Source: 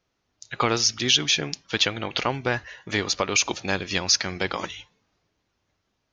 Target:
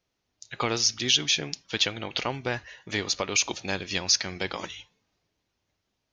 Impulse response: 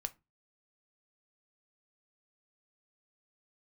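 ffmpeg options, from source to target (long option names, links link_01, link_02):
-filter_complex "[0:a]asplit=2[link_01][link_02];[link_02]highpass=frequency=1200:width=0.5412,highpass=frequency=1200:width=1.3066[link_03];[1:a]atrim=start_sample=2205,asetrate=27342,aresample=44100[link_04];[link_03][link_04]afir=irnorm=-1:irlink=0,volume=-9.5dB[link_05];[link_01][link_05]amix=inputs=2:normalize=0,volume=-4.5dB"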